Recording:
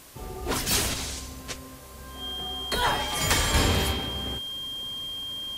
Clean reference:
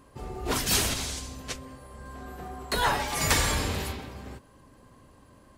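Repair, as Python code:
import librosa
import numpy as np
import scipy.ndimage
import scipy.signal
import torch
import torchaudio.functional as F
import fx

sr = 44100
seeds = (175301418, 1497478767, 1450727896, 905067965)

y = fx.notch(x, sr, hz=3200.0, q=30.0)
y = fx.noise_reduce(y, sr, print_start_s=1.57, print_end_s=2.07, reduce_db=13.0)
y = fx.gain(y, sr, db=fx.steps((0.0, 0.0), (3.54, -6.5)))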